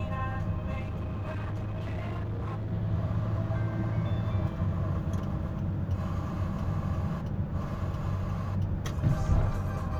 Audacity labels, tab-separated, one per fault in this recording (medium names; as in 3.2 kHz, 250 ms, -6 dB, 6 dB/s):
0.790000	2.730000	clipped -30.5 dBFS